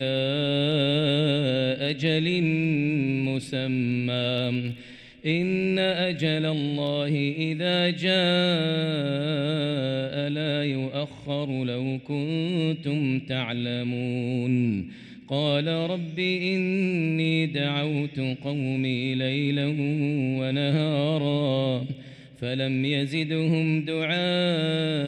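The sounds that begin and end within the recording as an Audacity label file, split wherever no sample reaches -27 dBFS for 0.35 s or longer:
5.250000	14.820000	sound
15.310000	21.920000	sound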